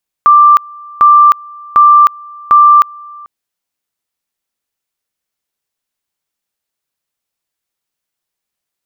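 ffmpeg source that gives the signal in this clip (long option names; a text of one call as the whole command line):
ffmpeg -f lavfi -i "aevalsrc='pow(10,(-1.5-26.5*gte(mod(t,0.75),0.31))/20)*sin(2*PI*1180*t)':duration=3:sample_rate=44100" out.wav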